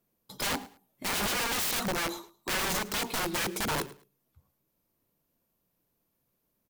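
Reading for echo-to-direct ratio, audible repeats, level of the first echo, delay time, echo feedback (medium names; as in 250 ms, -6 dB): -19.5 dB, 2, -19.5 dB, 108 ms, 23%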